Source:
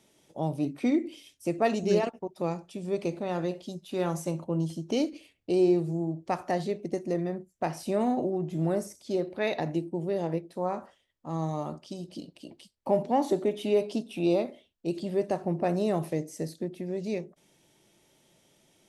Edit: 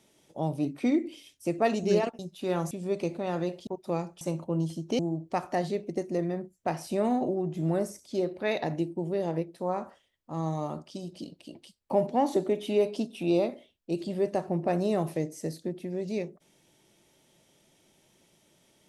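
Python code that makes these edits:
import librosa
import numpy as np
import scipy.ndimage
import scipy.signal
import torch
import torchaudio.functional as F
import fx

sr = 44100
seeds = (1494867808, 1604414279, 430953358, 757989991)

y = fx.edit(x, sr, fx.swap(start_s=2.19, length_s=0.54, other_s=3.69, other_length_s=0.52),
    fx.cut(start_s=4.99, length_s=0.96), tone=tone)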